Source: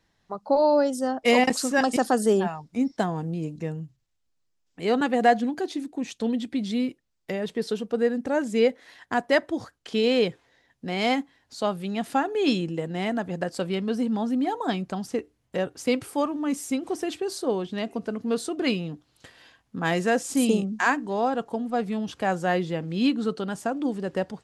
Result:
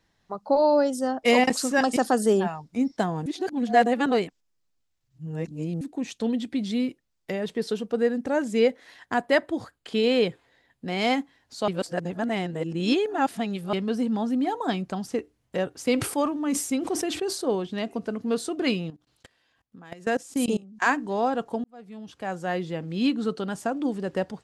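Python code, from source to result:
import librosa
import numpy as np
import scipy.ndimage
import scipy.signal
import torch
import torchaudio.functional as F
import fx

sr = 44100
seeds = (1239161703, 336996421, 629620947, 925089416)

y = fx.peak_eq(x, sr, hz=5800.0, db=-9.0, octaves=0.26, at=(9.16, 10.88))
y = fx.sustainer(y, sr, db_per_s=77.0, at=(15.84, 17.6))
y = fx.level_steps(y, sr, step_db=23, at=(18.9, 20.82))
y = fx.edit(y, sr, fx.reverse_span(start_s=3.26, length_s=2.55),
    fx.reverse_span(start_s=11.68, length_s=2.05),
    fx.fade_in_span(start_s=21.64, length_s=2.06, curve='qsin'), tone=tone)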